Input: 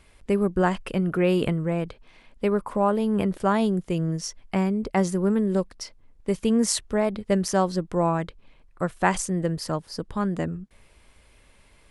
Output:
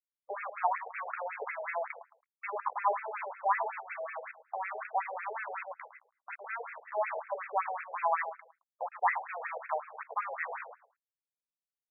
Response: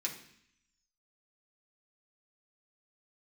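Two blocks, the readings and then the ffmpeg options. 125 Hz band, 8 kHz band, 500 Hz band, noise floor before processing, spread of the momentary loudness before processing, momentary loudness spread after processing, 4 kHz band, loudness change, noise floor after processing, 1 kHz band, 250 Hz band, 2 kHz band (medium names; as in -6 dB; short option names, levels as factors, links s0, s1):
under -40 dB, under -40 dB, -13.5 dB, -57 dBFS, 9 LU, 13 LU, under -40 dB, -10.5 dB, under -85 dBFS, -2.5 dB, under -40 dB, -2.5 dB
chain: -filter_complex "[0:a]aecho=1:1:1:0.86,adynamicequalizer=threshold=0.0178:dfrequency=190:dqfactor=2.9:tfrequency=190:tqfactor=2.9:attack=5:release=100:ratio=0.375:range=4:mode=cutabove:tftype=bell,areverse,acompressor=threshold=0.0316:ratio=4,areverse,acrusher=bits=5:mix=0:aa=0.000001,asplit=2[s0][s1];[s1]adelay=109,lowpass=f=1800:p=1,volume=0.355,asplit=2[s2][s3];[s3]adelay=109,lowpass=f=1800:p=1,volume=0.27,asplit=2[s4][s5];[s5]adelay=109,lowpass=f=1800:p=1,volume=0.27[s6];[s2][s4][s6]amix=inputs=3:normalize=0[s7];[s0][s7]amix=inputs=2:normalize=0,afftfilt=real='re*between(b*sr/1024,590*pow(1900/590,0.5+0.5*sin(2*PI*5.4*pts/sr))/1.41,590*pow(1900/590,0.5+0.5*sin(2*PI*5.4*pts/sr))*1.41)':imag='im*between(b*sr/1024,590*pow(1900/590,0.5+0.5*sin(2*PI*5.4*pts/sr))/1.41,590*pow(1900/590,0.5+0.5*sin(2*PI*5.4*pts/sr))*1.41)':win_size=1024:overlap=0.75,volume=2.24"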